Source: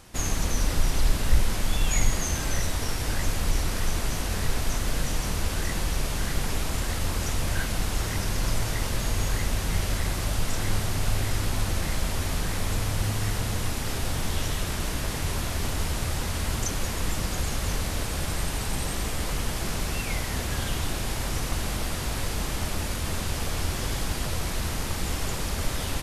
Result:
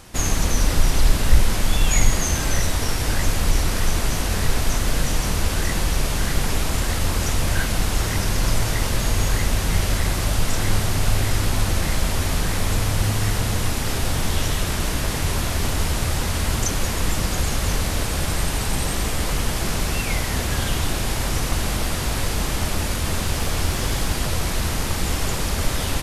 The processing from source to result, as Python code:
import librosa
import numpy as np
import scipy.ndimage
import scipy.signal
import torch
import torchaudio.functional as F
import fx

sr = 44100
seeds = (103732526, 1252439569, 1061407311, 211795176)

y = fx.dmg_crackle(x, sr, seeds[0], per_s=120.0, level_db=-37.0, at=(23.18, 24.16), fade=0.02)
y = F.gain(torch.from_numpy(y), 6.0).numpy()